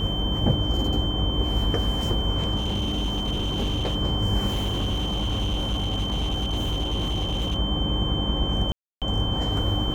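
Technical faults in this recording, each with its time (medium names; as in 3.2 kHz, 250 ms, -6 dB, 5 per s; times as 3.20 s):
buzz 50 Hz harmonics 23 -29 dBFS
whine 3.1 kHz -29 dBFS
2.56–3.96 s: clipped -21.5 dBFS
4.47–7.56 s: clipped -21.5 dBFS
8.72–9.02 s: dropout 297 ms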